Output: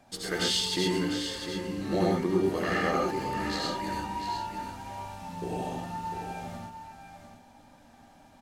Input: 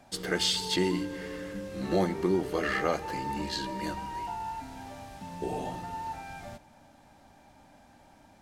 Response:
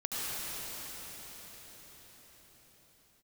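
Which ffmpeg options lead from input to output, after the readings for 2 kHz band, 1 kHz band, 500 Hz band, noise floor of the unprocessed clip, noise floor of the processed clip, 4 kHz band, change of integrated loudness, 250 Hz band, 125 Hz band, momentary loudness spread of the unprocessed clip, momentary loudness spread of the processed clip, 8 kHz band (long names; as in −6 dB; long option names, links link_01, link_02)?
+1.0 dB, +2.0 dB, +1.0 dB, −58 dBFS, −56 dBFS, +1.5 dB, +1.0 dB, +2.0 dB, +2.5 dB, 16 LU, 14 LU, +1.5 dB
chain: -filter_complex "[0:a]aecho=1:1:700:0.376[link_01];[1:a]atrim=start_sample=2205,atrim=end_sample=6174[link_02];[link_01][link_02]afir=irnorm=-1:irlink=0"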